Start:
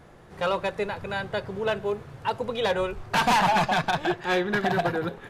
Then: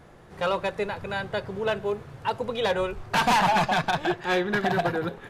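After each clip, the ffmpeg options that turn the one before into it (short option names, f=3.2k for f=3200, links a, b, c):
-af anull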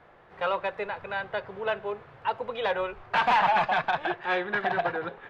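-filter_complex "[0:a]acrossover=split=480 3400:gain=0.251 1 0.0631[a][b][c];[a][b][c]amix=inputs=3:normalize=0"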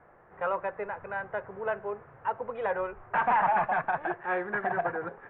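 -af "lowpass=f=1.9k:w=0.5412,lowpass=f=1.9k:w=1.3066,volume=-2dB"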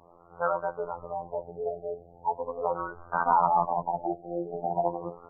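-af "afftfilt=real='hypot(re,im)*cos(PI*b)':imag='0':win_size=2048:overlap=0.75,afftfilt=real='re*lt(b*sr/1024,800*pow(1600/800,0.5+0.5*sin(2*PI*0.4*pts/sr)))':imag='im*lt(b*sr/1024,800*pow(1600/800,0.5+0.5*sin(2*PI*0.4*pts/sr)))':win_size=1024:overlap=0.75,volume=5.5dB"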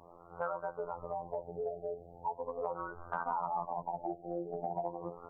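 -af "acompressor=threshold=-36dB:ratio=3"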